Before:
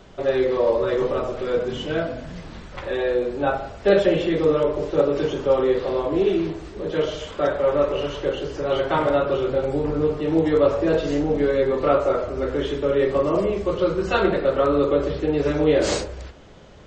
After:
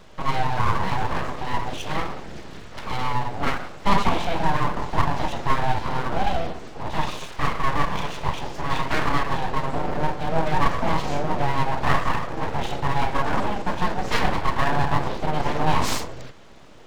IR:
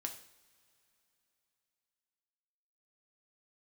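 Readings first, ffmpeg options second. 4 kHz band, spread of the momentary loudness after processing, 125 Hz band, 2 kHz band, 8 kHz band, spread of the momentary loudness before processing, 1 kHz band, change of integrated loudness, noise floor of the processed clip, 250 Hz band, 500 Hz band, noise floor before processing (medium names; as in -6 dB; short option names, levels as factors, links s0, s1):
+1.5 dB, 7 LU, +3.5 dB, +3.5 dB, no reading, 7 LU, +6.0 dB, -3.5 dB, -39 dBFS, -6.0 dB, -11.5 dB, -40 dBFS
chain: -af "aeval=exprs='abs(val(0))':c=same,volume=1.12"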